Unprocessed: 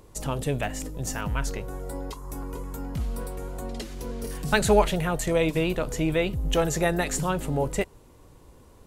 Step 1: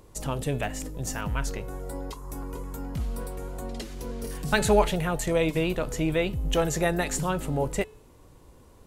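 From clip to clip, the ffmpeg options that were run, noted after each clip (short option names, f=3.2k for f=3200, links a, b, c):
-af "bandreject=f=431.5:t=h:w=4,bandreject=f=863:t=h:w=4,bandreject=f=1.2945k:t=h:w=4,bandreject=f=1.726k:t=h:w=4,bandreject=f=2.1575k:t=h:w=4,bandreject=f=2.589k:t=h:w=4,bandreject=f=3.0205k:t=h:w=4,bandreject=f=3.452k:t=h:w=4,bandreject=f=3.8835k:t=h:w=4,volume=-1dB"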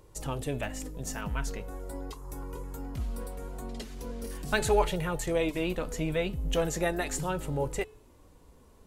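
-af "flanger=delay=2.1:depth=2.5:regen=-51:speed=0.4:shape=sinusoidal"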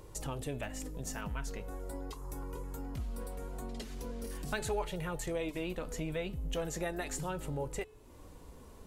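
-af "acompressor=threshold=-48dB:ratio=2,volume=4.5dB"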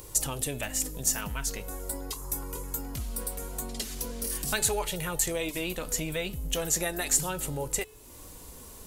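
-af "crystalizer=i=4.5:c=0,volume=3dB"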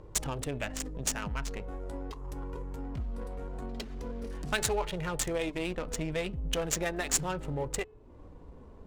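-af "adynamicsmooth=sensitivity=4.5:basefreq=900"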